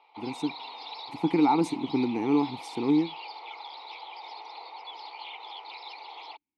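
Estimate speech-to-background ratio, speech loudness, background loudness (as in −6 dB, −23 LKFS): 13.5 dB, −27.5 LKFS, −41.0 LKFS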